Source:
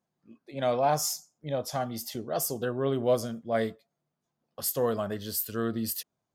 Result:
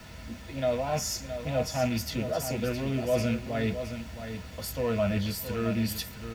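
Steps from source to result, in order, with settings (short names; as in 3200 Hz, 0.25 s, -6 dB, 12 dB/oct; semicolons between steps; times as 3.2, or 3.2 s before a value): rattling part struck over -35 dBFS, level -33 dBFS; reverse; compressor, threshold -35 dBFS, peak gain reduction 14.5 dB; reverse; added noise pink -54 dBFS; echo 0.668 s -9.5 dB; reverb RT60 0.10 s, pre-delay 3 ms, DRR 3 dB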